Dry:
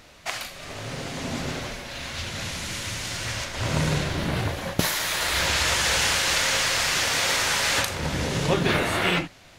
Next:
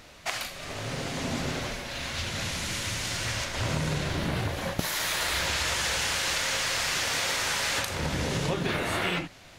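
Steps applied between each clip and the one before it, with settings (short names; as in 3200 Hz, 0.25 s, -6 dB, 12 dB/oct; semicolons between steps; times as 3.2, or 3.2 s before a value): compressor, threshold -25 dBFS, peak gain reduction 9.5 dB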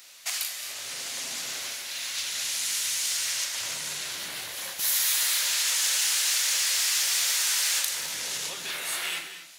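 soft clip -19.5 dBFS, distortion -22 dB; differentiator; non-linear reverb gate 0.27 s rising, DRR 9 dB; gain +8.5 dB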